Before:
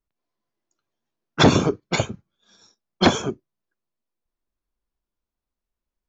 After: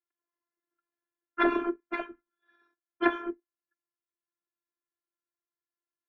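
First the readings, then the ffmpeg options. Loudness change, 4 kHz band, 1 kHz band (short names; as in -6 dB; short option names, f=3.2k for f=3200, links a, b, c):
-9.5 dB, -22.0 dB, -7.5 dB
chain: -af "highpass=f=210:w=0.5412,highpass=f=210:w=1.3066,equalizer=f=260:t=q:w=4:g=-6,equalizer=f=680:t=q:w=4:g=-8,equalizer=f=1.6k:t=q:w=4:g=8,lowpass=f=2.2k:w=0.5412,lowpass=f=2.2k:w=1.3066,afftfilt=real='hypot(re,im)*cos(PI*b)':imag='0':win_size=512:overlap=0.75,volume=-3.5dB"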